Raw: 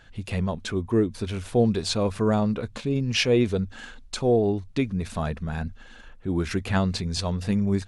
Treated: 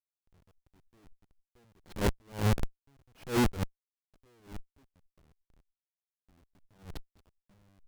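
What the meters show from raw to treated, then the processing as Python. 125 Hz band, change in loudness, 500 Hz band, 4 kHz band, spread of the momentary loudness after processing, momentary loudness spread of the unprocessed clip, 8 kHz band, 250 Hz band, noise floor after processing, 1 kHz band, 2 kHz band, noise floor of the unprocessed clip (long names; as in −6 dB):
−11.0 dB, −6.5 dB, −16.0 dB, −15.0 dB, 22 LU, 10 LU, −11.0 dB, −13.5 dB, below −85 dBFS, −9.0 dB, −10.5 dB, −47 dBFS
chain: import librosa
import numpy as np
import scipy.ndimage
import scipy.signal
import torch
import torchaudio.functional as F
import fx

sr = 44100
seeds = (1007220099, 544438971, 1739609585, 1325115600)

y = fx.quant_float(x, sr, bits=2)
y = fx.schmitt(y, sr, flips_db=-23.5)
y = fx.attack_slew(y, sr, db_per_s=180.0)
y = y * librosa.db_to_amplitude(2.5)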